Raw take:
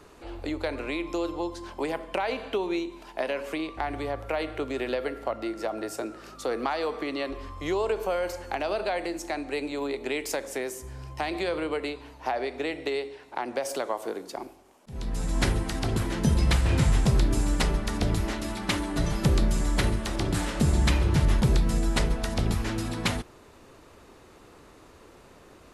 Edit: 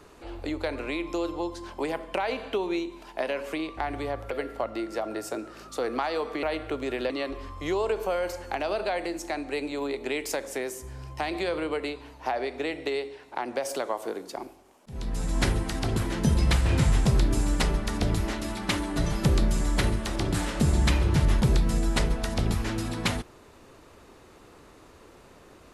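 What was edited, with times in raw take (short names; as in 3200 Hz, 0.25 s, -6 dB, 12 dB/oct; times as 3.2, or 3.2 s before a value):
4.31–4.98 move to 7.1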